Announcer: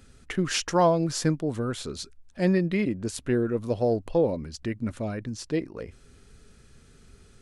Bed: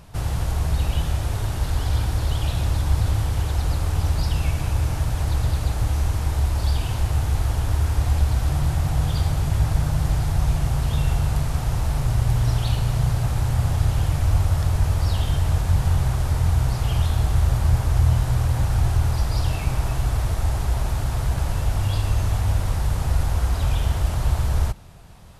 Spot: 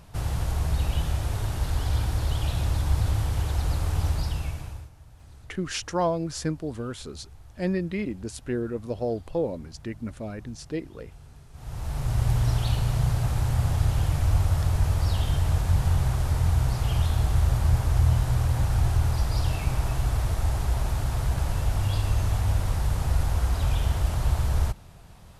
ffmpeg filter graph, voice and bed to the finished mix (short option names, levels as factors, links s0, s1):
-filter_complex "[0:a]adelay=5200,volume=0.631[s0];[1:a]volume=10.6,afade=t=out:st=4.05:d=0.85:silence=0.0668344,afade=t=in:st=11.52:d=0.73:silence=0.0630957[s1];[s0][s1]amix=inputs=2:normalize=0"